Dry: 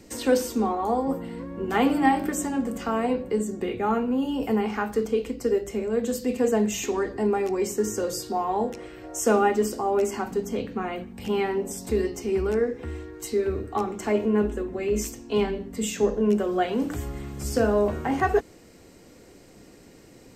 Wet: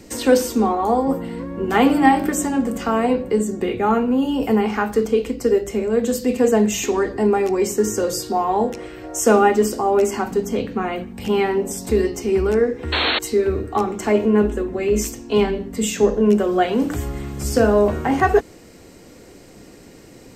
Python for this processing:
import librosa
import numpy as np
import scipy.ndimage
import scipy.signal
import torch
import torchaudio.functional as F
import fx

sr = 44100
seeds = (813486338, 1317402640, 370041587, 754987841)

y = fx.spec_paint(x, sr, seeds[0], shape='noise', start_s=12.92, length_s=0.27, low_hz=220.0, high_hz=4400.0, level_db=-26.0)
y = y * librosa.db_to_amplitude(6.5)